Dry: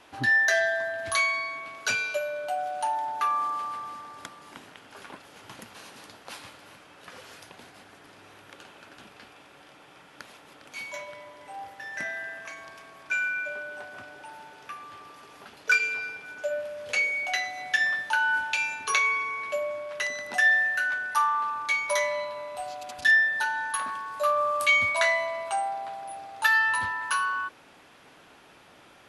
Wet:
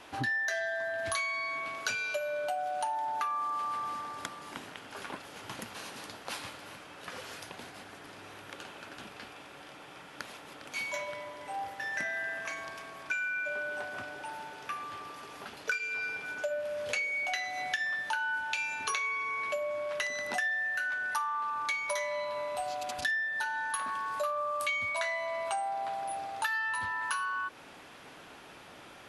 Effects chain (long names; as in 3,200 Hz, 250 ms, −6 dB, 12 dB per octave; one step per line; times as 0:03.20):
downward compressor 6 to 1, threshold −34 dBFS, peak gain reduction 15.5 dB
level +3 dB